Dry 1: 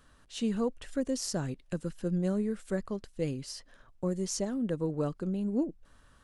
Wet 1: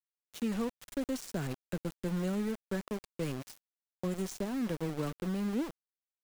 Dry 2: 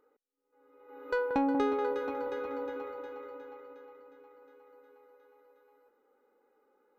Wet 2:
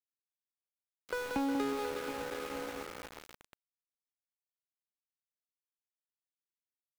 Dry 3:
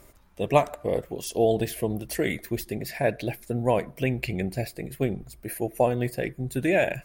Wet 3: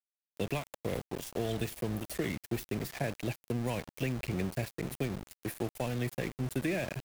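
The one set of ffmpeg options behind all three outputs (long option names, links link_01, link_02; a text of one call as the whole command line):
ffmpeg -i in.wav -filter_complex "[0:a]equalizer=frequency=5000:width_type=o:width=0.36:gain=-3,acrossover=split=110|1600|7800[link_01][link_02][link_03][link_04];[link_02]alimiter=limit=-17dB:level=0:latency=1:release=338[link_05];[link_01][link_05][link_03][link_04]amix=inputs=4:normalize=0,acrossover=split=300|1200[link_06][link_07][link_08];[link_06]acompressor=threshold=-32dB:ratio=4[link_09];[link_07]acompressor=threshold=-39dB:ratio=4[link_10];[link_08]acompressor=threshold=-41dB:ratio=4[link_11];[link_09][link_10][link_11]amix=inputs=3:normalize=0,aeval=exprs='val(0)*gte(abs(val(0)),0.0126)':channel_layout=same" out.wav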